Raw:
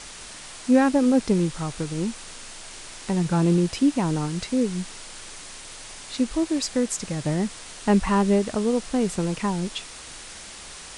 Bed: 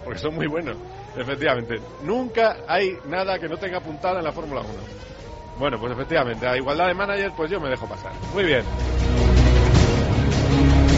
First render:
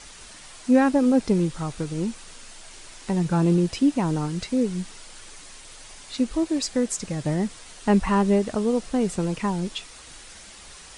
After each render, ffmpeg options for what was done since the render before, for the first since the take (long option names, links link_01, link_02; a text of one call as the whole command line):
ffmpeg -i in.wav -af "afftdn=noise_reduction=6:noise_floor=-41" out.wav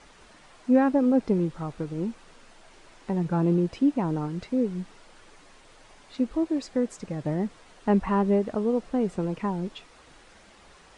ffmpeg -i in.wav -af "lowpass=frequency=1000:poles=1,lowshelf=frequency=150:gain=-8.5" out.wav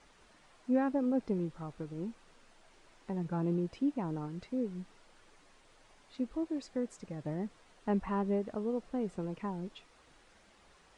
ffmpeg -i in.wav -af "volume=-9.5dB" out.wav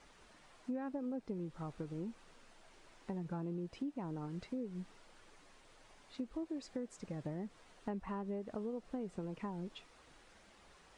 ffmpeg -i in.wav -af "acompressor=threshold=-38dB:ratio=6" out.wav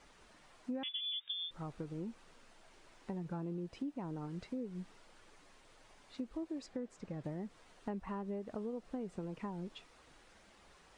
ffmpeg -i in.wav -filter_complex "[0:a]asettb=1/sr,asplit=3[link_01][link_02][link_03];[link_01]atrim=end=0.834[link_04];[link_02]atrim=start=0.83:end=1.51,asetpts=PTS-STARTPTS,afade=type=in:duration=0.004:curve=qsin,afade=type=out:start_time=0.676:duration=0.004:curve=qsin,lowpass=frequency=3100:width_type=q:width=0.5098,lowpass=frequency=3100:width_type=q:width=0.6013,lowpass=frequency=3100:width_type=q:width=0.9,lowpass=frequency=3100:width_type=q:width=2.563,afreqshift=-3700[link_05];[link_03]atrim=start=1.506[link_06];[link_04][link_05]acrossfade=duration=0.004:curve1=hsin:curve2=qsin[link_07];[link_07][link_06]acrossfade=duration=0.004:curve1=qsin:curve2=hsin,asettb=1/sr,asplit=3[link_08][link_09][link_10];[link_08]atrim=end=6.664[link_11];[link_09]atrim=start=6.66:end=7.24,asetpts=PTS-STARTPTS,afade=type=in:duration=0.004:curve=qsin,afade=type=out:start_time=0.576:duration=0.004:curve=qsin,highshelf=frequency=5700:gain=-10.5[link_12];[link_10]atrim=start=7.236[link_13];[link_11][link_12]acrossfade=duration=0.004:curve1=hsin:curve2=qsin[link_14];[link_14][link_13]acrossfade=duration=0.004:curve1=qsin:curve2=hsin" out.wav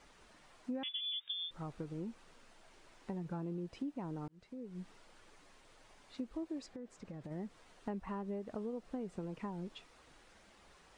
ffmpeg -i in.wav -filter_complex "[0:a]asplit=3[link_01][link_02][link_03];[link_01]afade=type=out:start_time=6.65:duration=0.02[link_04];[link_02]acompressor=threshold=-43dB:ratio=5:attack=3.2:release=140:knee=1:detection=peak,afade=type=in:start_time=6.65:duration=0.02,afade=type=out:start_time=7.3:duration=0.02[link_05];[link_03]afade=type=in:start_time=7.3:duration=0.02[link_06];[link_04][link_05][link_06]amix=inputs=3:normalize=0,asplit=2[link_07][link_08];[link_07]atrim=end=4.28,asetpts=PTS-STARTPTS,afade=type=out:start_time=4.276:duration=0.004:curve=hsin[link_09];[link_08]atrim=start=4.28,asetpts=PTS-STARTPTS,afade=type=in:duration=0.61[link_10];[link_09][link_10]concat=n=2:v=0:a=1" out.wav